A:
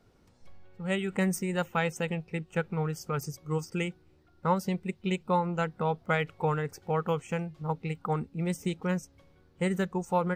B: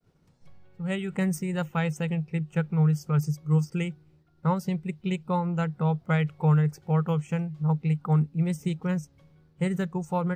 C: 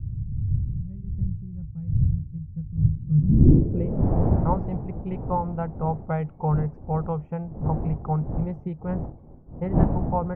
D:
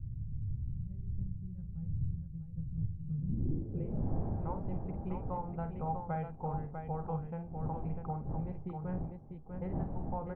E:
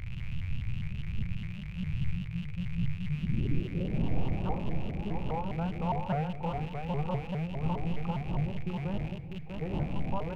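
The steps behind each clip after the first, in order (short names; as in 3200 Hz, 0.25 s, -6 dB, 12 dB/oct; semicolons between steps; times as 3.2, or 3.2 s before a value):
expander -59 dBFS; bell 150 Hz +14.5 dB 0.37 oct; gain -2 dB
wind noise 150 Hz -23 dBFS; dynamic EQ 2300 Hz, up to +7 dB, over -47 dBFS, Q 0.77; low-pass sweep 110 Hz -> 790 Hz, 2.92–4.11; gain -3.5 dB
compressor 3:1, threshold -25 dBFS, peak gain reduction 12 dB; resonator 800 Hz, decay 0.18 s, harmonics all, mix 70%; tapped delay 49/647 ms -9/-6 dB
rattling part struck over -46 dBFS, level -41 dBFS; on a send at -8.5 dB: reverb RT60 1.0 s, pre-delay 6 ms; on the sum: shaped vibrato saw up 4.9 Hz, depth 250 cents; gain +3 dB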